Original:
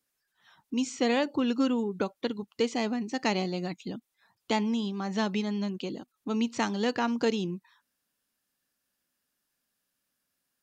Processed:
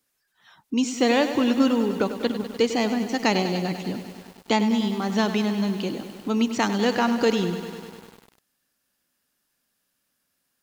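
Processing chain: bit-crushed delay 99 ms, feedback 80%, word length 8-bit, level -11 dB; trim +6 dB

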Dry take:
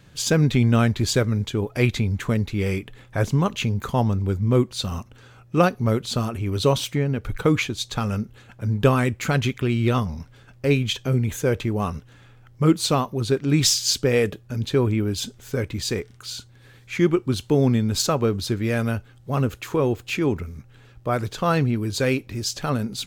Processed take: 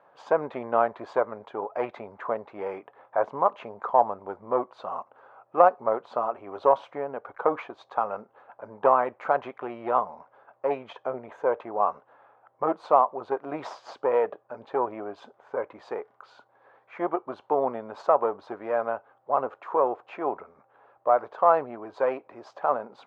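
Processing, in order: single-diode clipper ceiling -11.5 dBFS; Butterworth band-pass 810 Hz, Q 1.5; trim +8 dB

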